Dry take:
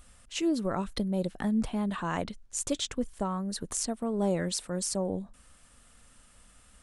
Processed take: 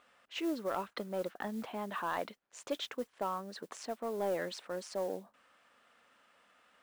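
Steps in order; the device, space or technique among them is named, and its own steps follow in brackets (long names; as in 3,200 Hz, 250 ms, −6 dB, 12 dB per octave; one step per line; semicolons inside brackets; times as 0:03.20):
carbon microphone (band-pass filter 450–2,700 Hz; soft clipping −24 dBFS, distortion −20 dB; noise that follows the level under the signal 22 dB)
0:00.92–0:01.40: parametric band 1,300 Hz +7.5 dB 0.79 octaves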